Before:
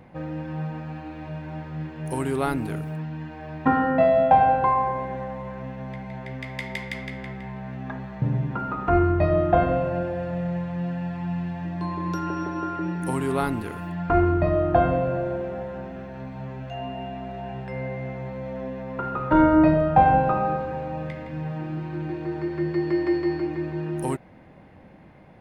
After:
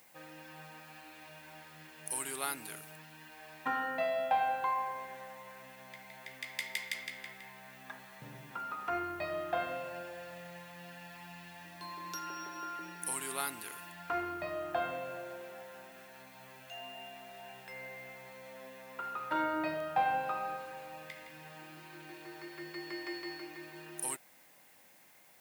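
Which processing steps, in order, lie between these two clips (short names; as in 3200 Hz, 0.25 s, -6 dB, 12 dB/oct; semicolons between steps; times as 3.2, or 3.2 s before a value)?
differentiator; added noise blue -69 dBFS; gain +5.5 dB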